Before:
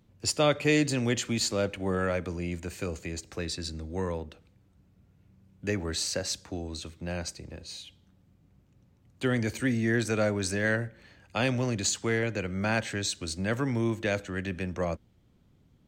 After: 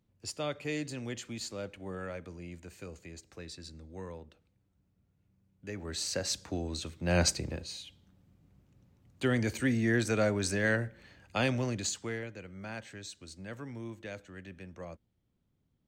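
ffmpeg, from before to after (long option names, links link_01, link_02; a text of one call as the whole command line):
ffmpeg -i in.wav -af "volume=10dB,afade=type=in:start_time=5.71:duration=0.74:silence=0.251189,afade=type=in:start_time=7.03:duration=0.2:silence=0.334965,afade=type=out:start_time=7.23:duration=0.5:silence=0.266073,afade=type=out:start_time=11.36:duration=0.98:silence=0.237137" out.wav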